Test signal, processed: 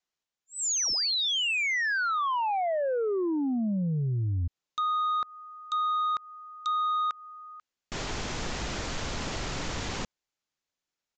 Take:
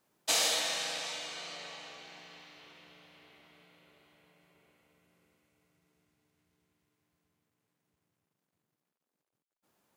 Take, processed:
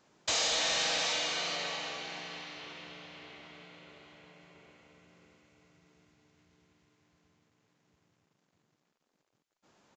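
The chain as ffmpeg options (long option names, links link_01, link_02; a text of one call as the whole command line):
ffmpeg -i in.wav -af "acompressor=threshold=-33dB:ratio=6,aresample=16000,aeval=exprs='0.0708*sin(PI/2*2.51*val(0)/0.0708)':channel_layout=same,aresample=44100,volume=-2.5dB" out.wav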